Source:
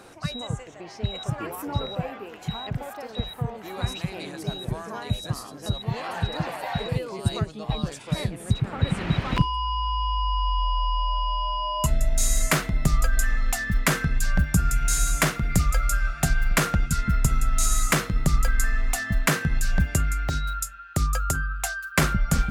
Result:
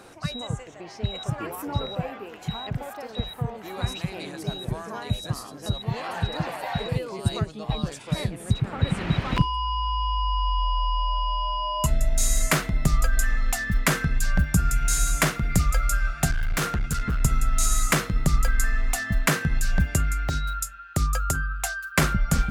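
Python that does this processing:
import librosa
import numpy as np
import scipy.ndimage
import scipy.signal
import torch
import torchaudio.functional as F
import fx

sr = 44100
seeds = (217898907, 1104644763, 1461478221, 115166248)

y = fx.clip_hard(x, sr, threshold_db=-21.0, at=(16.31, 17.21))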